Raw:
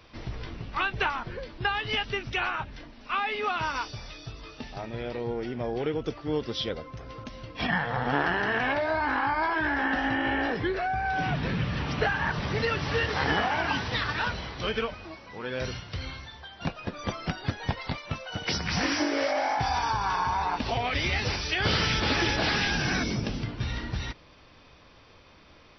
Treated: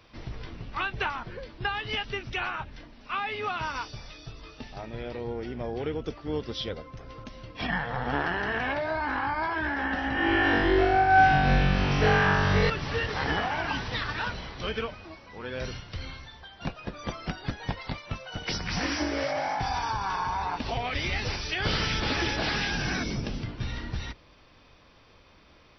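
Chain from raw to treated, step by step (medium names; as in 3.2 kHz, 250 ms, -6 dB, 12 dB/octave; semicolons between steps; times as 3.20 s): octave divider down 2 oct, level -5 dB; 10.13–12.70 s: flutter echo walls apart 3.6 m, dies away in 1.4 s; trim -2.5 dB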